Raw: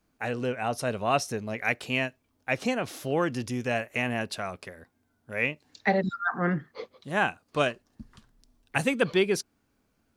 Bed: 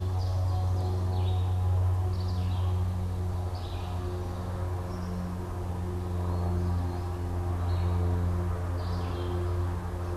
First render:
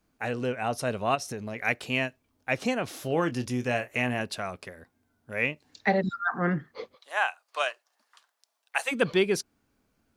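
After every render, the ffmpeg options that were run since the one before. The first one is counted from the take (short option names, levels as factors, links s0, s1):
-filter_complex "[0:a]asplit=3[s0][s1][s2];[s0]afade=t=out:st=1.14:d=0.02[s3];[s1]acompressor=threshold=0.0316:ratio=6:attack=3.2:release=140:knee=1:detection=peak,afade=t=in:st=1.14:d=0.02,afade=t=out:st=1.55:d=0.02[s4];[s2]afade=t=in:st=1.55:d=0.02[s5];[s3][s4][s5]amix=inputs=3:normalize=0,asettb=1/sr,asplit=3[s6][s7][s8];[s6]atrim=end=2.964[s9];[s7]atrim=start=2.96:end=4.2,asetpts=PTS-STARTPTS,afade=t=in:d=0.004:c=qsin,afade=t=out:st=1.236:d=0.004:c=qsin,asplit=2[s10][s11];[s11]adelay=24,volume=0.282[s12];[s10][s12]amix=inputs=2:normalize=0,atrim=end_sample=54684[s13];[s8]atrim=start=4.196[s14];[s9][s13]acrossfade=d=0.004:c1=hsin:c2=qsin[s15];[s15][s14]acrossfade=d=0.004:c1=qsin:c2=hsin,asplit=3[s16][s17][s18];[s16]afade=t=out:st=6.95:d=0.02[s19];[s17]highpass=f=660:w=0.5412,highpass=f=660:w=1.3066,afade=t=in:st=6.95:d=0.02,afade=t=out:st=8.91:d=0.02[s20];[s18]afade=t=in:st=8.91:d=0.02[s21];[s19][s20][s21]amix=inputs=3:normalize=0"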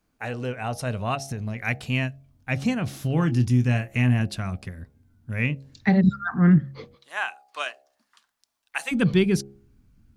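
-af "asubboost=boost=12:cutoff=160,bandreject=f=68.3:t=h:w=4,bandreject=f=136.6:t=h:w=4,bandreject=f=204.9:t=h:w=4,bandreject=f=273.2:t=h:w=4,bandreject=f=341.5:t=h:w=4,bandreject=f=409.8:t=h:w=4,bandreject=f=478.1:t=h:w=4,bandreject=f=546.4:t=h:w=4,bandreject=f=614.7:t=h:w=4,bandreject=f=683:t=h:w=4,bandreject=f=751.3:t=h:w=4,bandreject=f=819.6:t=h:w=4"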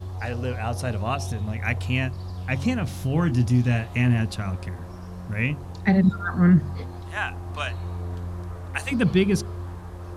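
-filter_complex "[1:a]volume=0.631[s0];[0:a][s0]amix=inputs=2:normalize=0"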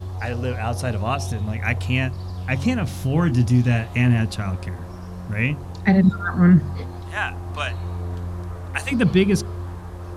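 -af "volume=1.41"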